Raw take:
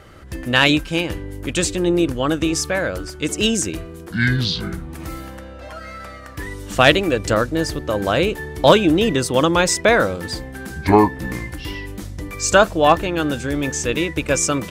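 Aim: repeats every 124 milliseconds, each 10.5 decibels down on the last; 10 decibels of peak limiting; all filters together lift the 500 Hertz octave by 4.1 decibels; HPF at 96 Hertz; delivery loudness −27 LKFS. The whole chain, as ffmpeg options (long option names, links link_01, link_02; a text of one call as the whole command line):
ffmpeg -i in.wav -af "highpass=96,equalizer=frequency=500:width_type=o:gain=5,alimiter=limit=-7dB:level=0:latency=1,aecho=1:1:124|248|372:0.299|0.0896|0.0269,volume=-8dB" out.wav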